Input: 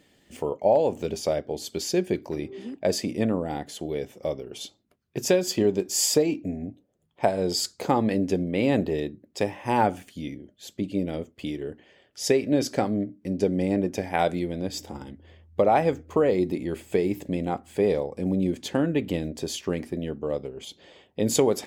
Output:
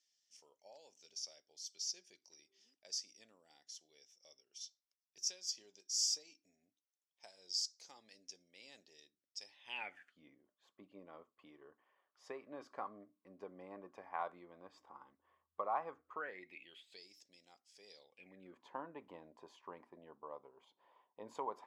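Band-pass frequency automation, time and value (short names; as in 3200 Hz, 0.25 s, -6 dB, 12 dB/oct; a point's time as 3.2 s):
band-pass, Q 10
9.39 s 5600 Hz
10.23 s 1100 Hz
16.03 s 1100 Hz
17.1 s 5400 Hz
17.91 s 5400 Hz
18.59 s 1000 Hz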